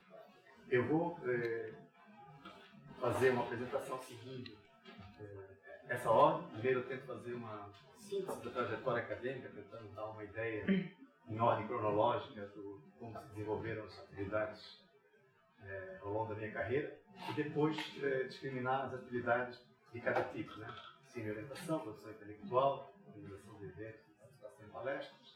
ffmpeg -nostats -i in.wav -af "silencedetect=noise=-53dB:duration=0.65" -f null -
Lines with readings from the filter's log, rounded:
silence_start: 14.79
silence_end: 15.61 | silence_duration: 0.83